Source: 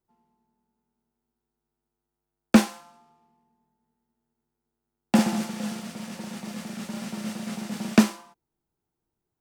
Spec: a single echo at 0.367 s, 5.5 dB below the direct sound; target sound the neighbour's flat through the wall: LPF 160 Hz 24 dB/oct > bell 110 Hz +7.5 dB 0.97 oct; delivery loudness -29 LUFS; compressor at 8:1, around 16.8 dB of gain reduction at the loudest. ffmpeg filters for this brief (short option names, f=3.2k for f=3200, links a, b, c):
-af "acompressor=threshold=-28dB:ratio=8,lowpass=f=160:w=0.5412,lowpass=f=160:w=1.3066,equalizer=f=110:t=o:w=0.97:g=7.5,aecho=1:1:367:0.531,volume=15dB"